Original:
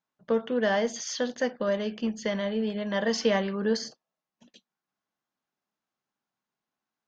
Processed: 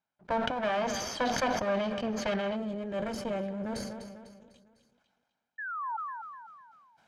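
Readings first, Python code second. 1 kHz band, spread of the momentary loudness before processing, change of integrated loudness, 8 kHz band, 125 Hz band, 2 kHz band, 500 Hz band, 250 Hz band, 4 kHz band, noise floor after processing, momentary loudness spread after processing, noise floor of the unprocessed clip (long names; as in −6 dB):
+4.0 dB, 6 LU, −4.5 dB, can't be measured, −2.5 dB, −2.0 dB, −5.0 dB, −4.5 dB, −3.5 dB, −84 dBFS, 16 LU, below −85 dBFS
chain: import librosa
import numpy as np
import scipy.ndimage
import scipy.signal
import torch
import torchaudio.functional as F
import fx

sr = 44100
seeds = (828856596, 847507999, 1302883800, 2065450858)

y = fx.lower_of_two(x, sr, delay_ms=1.3)
y = fx.high_shelf(y, sr, hz=3500.0, db=-8.0)
y = fx.spec_paint(y, sr, seeds[0], shape='fall', start_s=5.58, length_s=0.39, low_hz=850.0, high_hz=1800.0, level_db=-38.0)
y = fx.air_absorb(y, sr, metres=53.0)
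y = fx.rider(y, sr, range_db=10, speed_s=0.5)
y = fx.highpass(y, sr, hz=130.0, slope=6)
y = fx.echo_feedback(y, sr, ms=250, feedback_pct=47, wet_db=-17.5)
y = fx.spec_box(y, sr, start_s=2.56, length_s=2.38, low_hz=610.0, high_hz=6300.0, gain_db=-9)
y = fx.sustainer(y, sr, db_per_s=30.0)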